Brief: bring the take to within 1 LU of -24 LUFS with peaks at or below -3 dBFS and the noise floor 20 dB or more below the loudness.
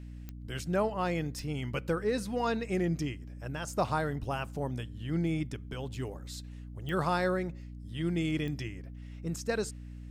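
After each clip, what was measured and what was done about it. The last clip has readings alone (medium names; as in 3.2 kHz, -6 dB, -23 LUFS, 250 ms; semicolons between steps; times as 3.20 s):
clicks found 4; hum 60 Hz; highest harmonic 300 Hz; hum level -42 dBFS; loudness -33.5 LUFS; peak level -17.5 dBFS; loudness target -24.0 LUFS
-> de-click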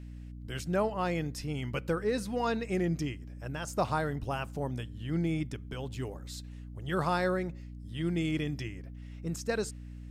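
clicks found 0; hum 60 Hz; highest harmonic 300 Hz; hum level -42 dBFS
-> hum notches 60/120/180/240/300 Hz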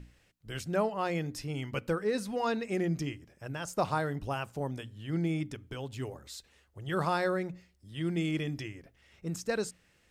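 hum not found; loudness -34.0 LUFS; peak level -17.5 dBFS; loudness target -24.0 LUFS
-> trim +10 dB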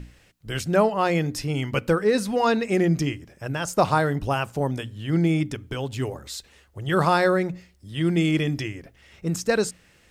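loudness -24.0 LUFS; peak level -7.5 dBFS; noise floor -58 dBFS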